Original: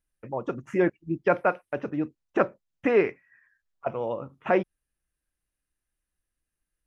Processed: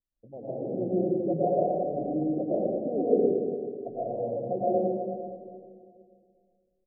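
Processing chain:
Chebyshev low-pass with heavy ripple 750 Hz, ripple 3 dB
on a send: single-tap delay 116 ms −11 dB
on the sum: comb and all-pass reverb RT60 2.1 s, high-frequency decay 0.3×, pre-delay 80 ms, DRR −9 dB
level −9 dB

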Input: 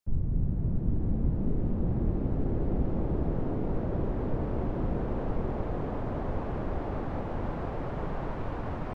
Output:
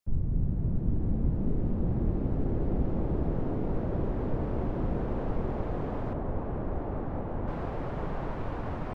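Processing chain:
0:06.13–0:07.48: low-pass filter 1,200 Hz 6 dB per octave

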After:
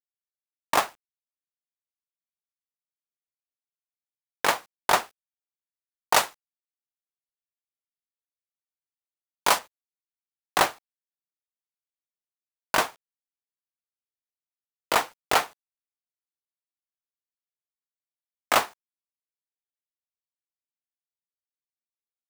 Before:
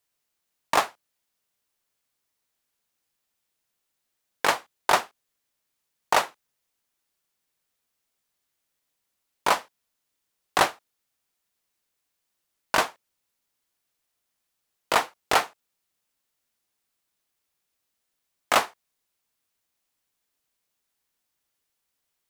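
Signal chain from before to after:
0:06.14–0:09.59: high-shelf EQ 3,700 Hz +9 dB
log-companded quantiser 4 bits
level −1 dB

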